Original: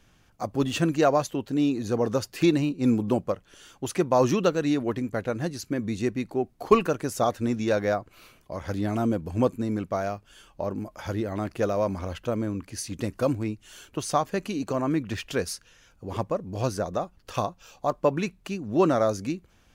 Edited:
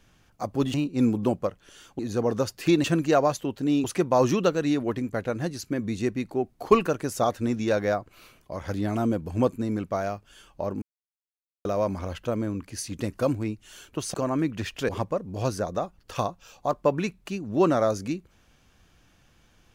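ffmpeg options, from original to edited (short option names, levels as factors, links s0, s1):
-filter_complex "[0:a]asplit=9[s0][s1][s2][s3][s4][s5][s6][s7][s8];[s0]atrim=end=0.742[s9];[s1]atrim=start=2.588:end=3.842[s10];[s2]atrim=start=1.738:end=2.592[s11];[s3]atrim=start=0.738:end=1.742[s12];[s4]atrim=start=3.838:end=10.82,asetpts=PTS-STARTPTS,afade=t=out:st=6.978:d=0.004:c=hsin[s13];[s5]atrim=start=10.82:end=11.65,asetpts=PTS-STARTPTS,volume=0[s14];[s6]atrim=start=11.65:end=14.142,asetpts=PTS-STARTPTS,afade=t=in:d=0.004:c=hsin[s15];[s7]atrim=start=14.658:end=15.412[s16];[s8]atrim=start=16.078[s17];[s9][s10]acrossfade=d=0.004:c1=hsin:c2=hsin[s18];[s18][s11]acrossfade=d=0.004:c1=hsin:c2=hsin[s19];[s19][s12]acrossfade=d=0.004:c1=hsin:c2=hsin[s20];[s13][s14][s15]concat=n=3:v=0:a=1[s21];[s20][s21]acrossfade=d=0.004:c1=hsin:c2=hsin[s22];[s22][s16]acrossfade=d=0.004:c1=hsin:c2=hsin[s23];[s23][s17]acrossfade=d=0.004:c1=hsin:c2=hsin"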